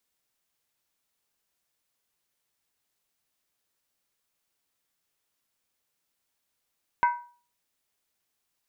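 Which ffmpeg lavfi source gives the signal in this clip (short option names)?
-f lavfi -i "aevalsrc='0.158*pow(10,-3*t/0.41)*sin(2*PI*964*t)+0.0631*pow(10,-3*t/0.325)*sin(2*PI*1536.6*t)+0.0251*pow(10,-3*t/0.281)*sin(2*PI*2059.1*t)+0.01*pow(10,-3*t/0.271)*sin(2*PI*2213.3*t)+0.00398*pow(10,-3*t/0.252)*sin(2*PI*2557.5*t)':d=0.63:s=44100"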